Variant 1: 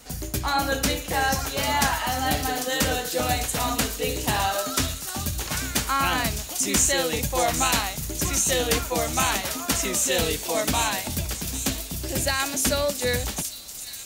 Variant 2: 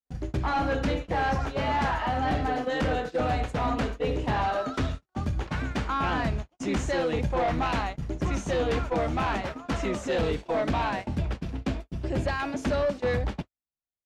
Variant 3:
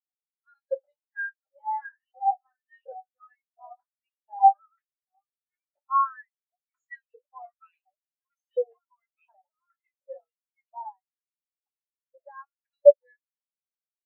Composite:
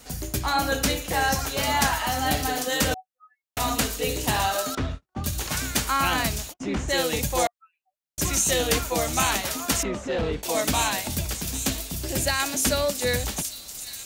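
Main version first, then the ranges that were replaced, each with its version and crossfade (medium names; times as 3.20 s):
1
2.94–3.57 s: from 3
4.75–5.24 s: from 2
6.51–6.91 s: from 2, crossfade 0.06 s
7.47–8.18 s: from 3
9.83–10.43 s: from 2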